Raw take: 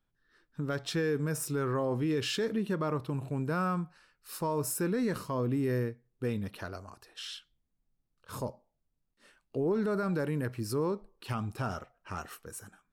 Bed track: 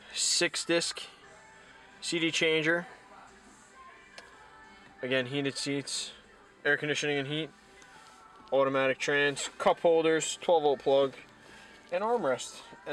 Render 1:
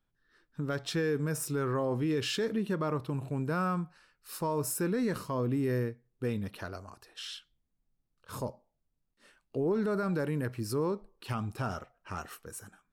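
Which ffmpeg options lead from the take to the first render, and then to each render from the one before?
-af anull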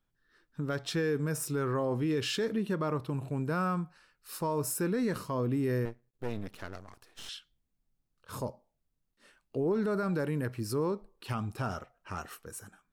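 -filter_complex "[0:a]asettb=1/sr,asplit=3[a][b][c];[a]atrim=end=5.854[d];[b]atrim=start=5.85:end=7.29,asetpts=PTS-STARTPTS,afade=t=in:d=0.004:c=qsin,afade=t=out:st=1.436:d=0.004:c=qsin,aeval=exprs='max(val(0),0)':c=same[e];[c]atrim=start=7.286[f];[d][e]acrossfade=d=0.004:c1=hsin:c2=qsin[g];[g][f]acrossfade=d=0.004:c1=qsin:c2=hsin"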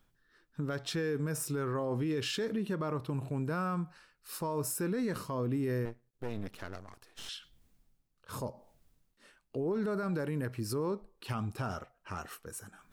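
-af "alimiter=level_in=2.5dB:limit=-24dB:level=0:latency=1:release=69,volume=-2.5dB,areverse,acompressor=mode=upward:threshold=-51dB:ratio=2.5,areverse"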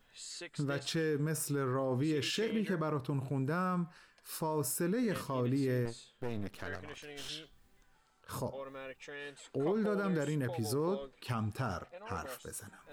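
-filter_complex "[1:a]volume=-18.5dB[a];[0:a][a]amix=inputs=2:normalize=0"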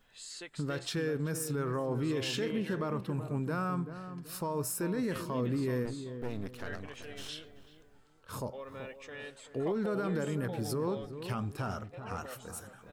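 -filter_complex "[0:a]asplit=2[a][b];[b]adelay=383,lowpass=f=950:p=1,volume=-9dB,asplit=2[c][d];[d]adelay=383,lowpass=f=950:p=1,volume=0.37,asplit=2[e][f];[f]adelay=383,lowpass=f=950:p=1,volume=0.37,asplit=2[g][h];[h]adelay=383,lowpass=f=950:p=1,volume=0.37[i];[a][c][e][g][i]amix=inputs=5:normalize=0"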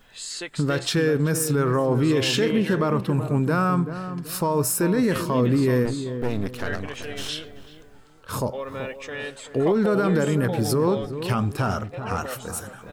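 -af "volume=12dB"

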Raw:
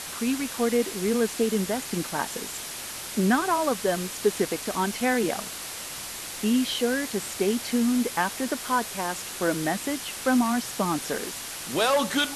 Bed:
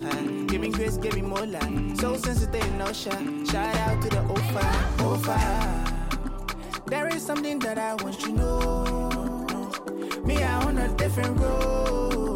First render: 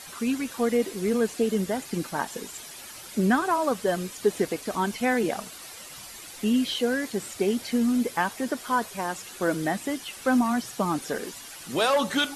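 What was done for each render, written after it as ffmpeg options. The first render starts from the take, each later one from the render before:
-af "afftdn=nr=10:nf=-37"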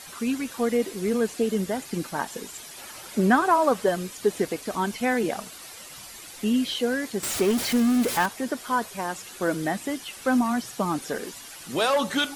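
-filter_complex "[0:a]asettb=1/sr,asplit=3[a][b][c];[a]atrim=end=2.774[d];[b]atrim=start=2.77:end=3.89,asetpts=PTS-STARTPTS,afade=t=in:d=0.004:c=qsin,afade=t=out:st=1.116:d=0.004:c=qsin,equalizer=f=810:w=0.48:g=5[e];[c]atrim=start=3.886[f];[d][e]acrossfade=d=0.004:c1=hsin:c2=qsin[g];[g][f]acrossfade=d=0.004:c1=qsin:c2=hsin,asettb=1/sr,asplit=3[h][i][j];[h]atrim=end=7.234[k];[i]atrim=start=7.23:end=8.26,asetpts=PTS-STARTPTS,afade=t=in:d=0.004:c=qsin,afade=t=out:st=1.026:d=0.004:c=qsin,aeval=exprs='val(0)+0.5*0.0531*sgn(val(0))':c=same[l];[j]atrim=start=8.256[m];[k][l]acrossfade=d=0.004:c1=hsin:c2=qsin[n];[n][m]acrossfade=d=0.004:c1=qsin:c2=hsin"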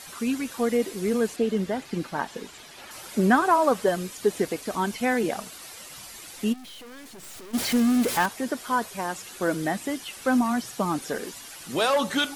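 -filter_complex "[0:a]asettb=1/sr,asplit=3[a][b][c];[a]atrim=end=1.364[d];[b]atrim=start=1.36:end=2.91,asetpts=PTS-STARTPTS,afade=t=in:d=0.004:c=qsin,afade=t=out:st=1.546:d=0.004:c=qsin,acrossover=split=4900[e][f];[f]acompressor=threshold=-53dB:ratio=4:attack=1:release=60[g];[e][g]amix=inputs=2:normalize=0[h];[c]atrim=start=2.906[i];[d][h]acrossfade=d=0.004:c1=hsin:c2=qsin[j];[j][i]acrossfade=d=0.004:c1=qsin:c2=hsin,asplit=3[k][l][m];[k]afade=t=out:st=6.52:d=0.02[n];[l]aeval=exprs='(tanh(141*val(0)+0.5)-tanh(0.5))/141':c=same,afade=t=in:st=6.52:d=0.02,afade=t=out:st=7.53:d=0.02[o];[m]afade=t=in:st=7.53:d=0.02[p];[n][o][p]amix=inputs=3:normalize=0"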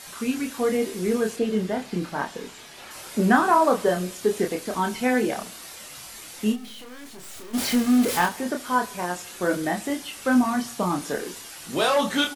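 -filter_complex "[0:a]asplit=2[a][b];[b]adelay=28,volume=-4dB[c];[a][c]amix=inputs=2:normalize=0,aecho=1:1:75|150|225|300:0.0891|0.049|0.027|0.0148"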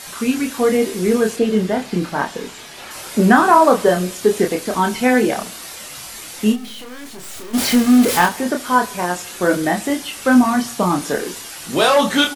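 -af "volume=7.5dB,alimiter=limit=-1dB:level=0:latency=1"

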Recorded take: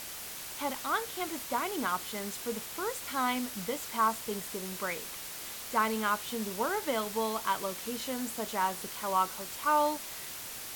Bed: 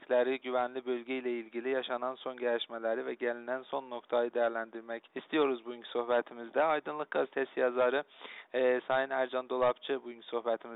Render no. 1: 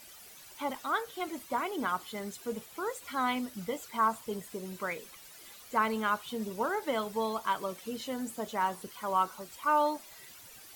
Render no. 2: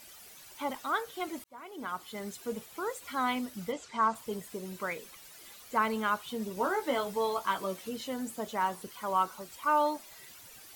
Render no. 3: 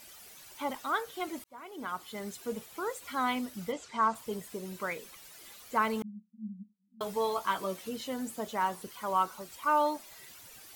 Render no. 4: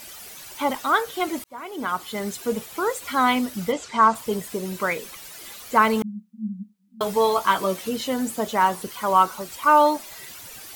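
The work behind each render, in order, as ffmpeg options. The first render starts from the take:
-af "afftdn=nr=13:nf=-42"
-filter_complex "[0:a]asplit=3[a][b][c];[a]afade=t=out:st=3.71:d=0.02[d];[b]lowpass=f=7.6k:w=0.5412,lowpass=f=7.6k:w=1.3066,afade=t=in:st=3.71:d=0.02,afade=t=out:st=4.14:d=0.02[e];[c]afade=t=in:st=4.14:d=0.02[f];[d][e][f]amix=inputs=3:normalize=0,asettb=1/sr,asplit=3[g][h][i];[g]atrim=end=6.554[j];[h]atrim=start=6.55:end=7.89,asetpts=PTS-STARTPTS,afade=t=in:d=0.004:c=qsin,afade=t=out:st=1.336:d=0.004:c=qsin,asplit=2[k][l];[l]adelay=16,volume=-4dB[m];[k][m]amix=inputs=2:normalize=0,atrim=end_sample=59094[n];[i]atrim=start=7.886[o];[j][n]acrossfade=d=0.004:c1=hsin:c2=qsin[p];[p][o]acrossfade=d=0.004:c1=qsin:c2=hsin,asplit=2[q][r];[q]atrim=end=1.44,asetpts=PTS-STARTPTS,afade=t=out:st=1.436:d=0.004:c=hsin[s];[r]atrim=start=1.44,asetpts=PTS-STARTPTS,afade=t=in:d=0.85[t];[s][t]concat=n=2:v=0:a=1"
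-filter_complex "[0:a]asettb=1/sr,asplit=3[a][b][c];[a]atrim=end=6.024[d];[b]atrim=start=6.02:end=7.01,asetpts=PTS-STARTPTS,afade=t=in:d=0.004:c=qsin,afade=t=out:st=0.986:d=0.004:c=qsin,asuperpass=centerf=200:order=8:qfactor=5.9[e];[c]atrim=start=7.006[f];[d][e]acrossfade=d=0.004:c1=hsin:c2=qsin[g];[g][f]acrossfade=d=0.004:c1=qsin:c2=hsin"
-af "volume=11dB"

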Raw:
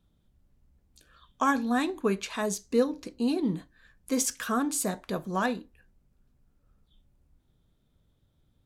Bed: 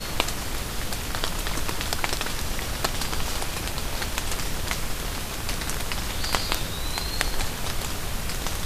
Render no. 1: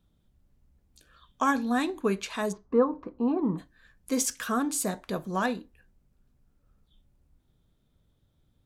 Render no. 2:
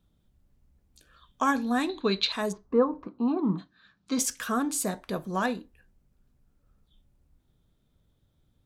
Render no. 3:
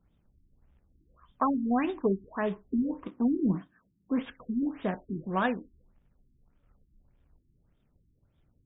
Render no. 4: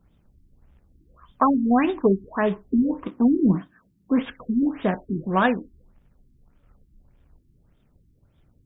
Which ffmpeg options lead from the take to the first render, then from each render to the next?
-filter_complex "[0:a]asplit=3[a][b][c];[a]afade=t=out:st=2.51:d=0.02[d];[b]lowpass=f=1.1k:t=q:w=3.9,afade=t=in:st=2.51:d=0.02,afade=t=out:st=3.57:d=0.02[e];[c]afade=t=in:st=3.57:d=0.02[f];[d][e][f]amix=inputs=3:normalize=0"
-filter_complex "[0:a]asettb=1/sr,asplit=3[a][b][c];[a]atrim=end=1.894[d];[b]atrim=start=1.89:end=2.32,asetpts=PTS-STARTPTS,afade=t=in:d=0.004:c=qsin,afade=t=out:st=0.426:d=0.004:c=qsin,lowpass=f=4k:t=q:w=16[e];[c]atrim=start=2.316[f];[d][e]acrossfade=d=0.004:c1=hsin:c2=qsin[g];[g][f]acrossfade=d=0.004:c1=qsin:c2=hsin,asettb=1/sr,asplit=3[h][i][j];[h]atrim=end=3.064[k];[i]atrim=start=3.06:end=4.19,asetpts=PTS-STARTPTS,afade=t=in:d=0.004:c=qsin,afade=t=out:st=1.126:d=0.004:c=qsin,highpass=130,equalizer=f=190:t=q:w=4:g=5,equalizer=f=500:t=q:w=4:g=-8,equalizer=f=1.3k:t=q:w=4:g=7,equalizer=f=1.9k:t=q:w=4:g=-5,equalizer=f=3.9k:t=q:w=4:g=8,lowpass=f=5.7k:w=0.5412,lowpass=f=5.7k:w=1.3066[l];[j]atrim=start=4.186[m];[k][l]acrossfade=d=0.004:c1=hsin:c2=qsin[n];[n][m]acrossfade=d=0.004:c1=qsin:c2=hsin,asettb=1/sr,asplit=3[o][p][q];[o]atrim=end=4.894[r];[p]atrim=start=4.89:end=5.34,asetpts=PTS-STARTPTS,afade=t=in:d=0.004:c=qsin,afade=t=out:st=0.446:d=0.004:c=qsin,bandreject=f=6.9k:w=12[s];[q]atrim=start=5.336[t];[r][s]acrossfade=d=0.004:c1=hsin:c2=qsin[u];[u][t]acrossfade=d=0.004:c1=qsin:c2=hsin"
-af "acrusher=bits=3:mode=log:mix=0:aa=0.000001,afftfilt=real='re*lt(b*sr/1024,380*pow(3800/380,0.5+0.5*sin(2*PI*1.7*pts/sr)))':imag='im*lt(b*sr/1024,380*pow(3800/380,0.5+0.5*sin(2*PI*1.7*pts/sr)))':win_size=1024:overlap=0.75"
-af "volume=8dB"

